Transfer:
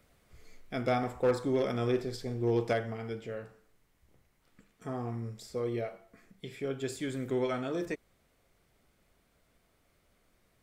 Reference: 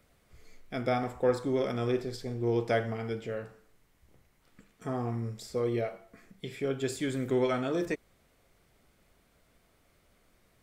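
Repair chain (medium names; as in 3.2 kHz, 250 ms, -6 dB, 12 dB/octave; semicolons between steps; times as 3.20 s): clip repair -20.5 dBFS; gain correction +3.5 dB, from 2.73 s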